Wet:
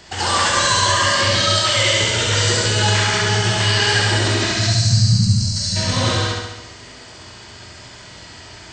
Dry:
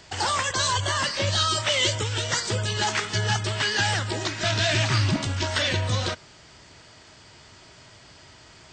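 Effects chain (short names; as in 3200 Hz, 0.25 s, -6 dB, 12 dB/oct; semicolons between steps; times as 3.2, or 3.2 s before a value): spectral gain 4.48–5.77, 230–3900 Hz -24 dB; limiter -17.5 dBFS, peak gain reduction 7.5 dB; on a send: flutter echo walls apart 11.7 m, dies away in 1 s; on the sum: non-linear reverb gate 0.27 s flat, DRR -3 dB; gain +4 dB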